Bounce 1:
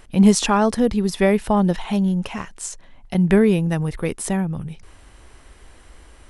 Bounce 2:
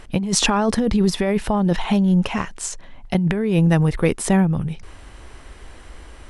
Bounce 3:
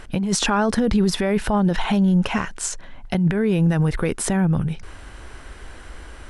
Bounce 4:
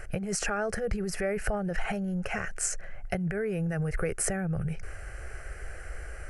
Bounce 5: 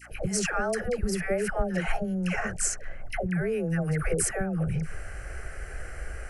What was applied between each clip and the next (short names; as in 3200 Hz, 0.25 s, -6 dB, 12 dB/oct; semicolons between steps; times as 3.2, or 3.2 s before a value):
high shelf 9600 Hz -10 dB; negative-ratio compressor -20 dBFS, ratio -1; gain +3 dB
limiter -12.5 dBFS, peak gain reduction 9.5 dB; bell 1500 Hz +6.5 dB 0.26 oct; gain +1.5 dB
compressor, threshold -22 dBFS, peak gain reduction 8 dB; fixed phaser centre 980 Hz, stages 6
dispersion lows, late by 0.117 s, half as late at 700 Hz; hum 60 Hz, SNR 27 dB; gain +2.5 dB